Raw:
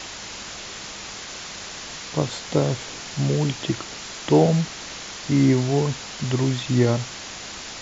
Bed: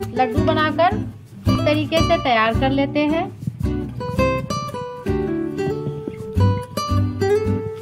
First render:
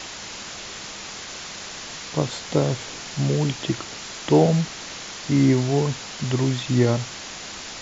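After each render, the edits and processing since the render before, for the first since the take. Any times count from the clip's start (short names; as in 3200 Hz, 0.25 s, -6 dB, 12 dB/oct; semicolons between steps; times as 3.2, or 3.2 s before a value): de-hum 50 Hz, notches 2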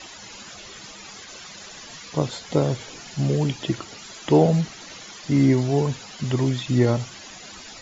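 denoiser 13 dB, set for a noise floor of -36 dBFS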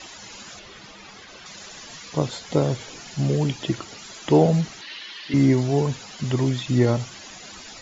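0.59–1.46 air absorption 120 m; 4.81–5.34 speaker cabinet 380–4800 Hz, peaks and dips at 500 Hz -8 dB, 710 Hz -10 dB, 1300 Hz -4 dB, 1800 Hz +7 dB, 2900 Hz +9 dB, 4100 Hz +6 dB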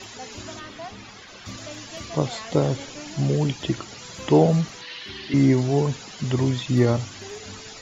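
add bed -22 dB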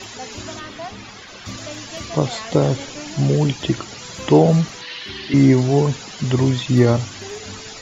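gain +5 dB; limiter -2 dBFS, peak gain reduction 2.5 dB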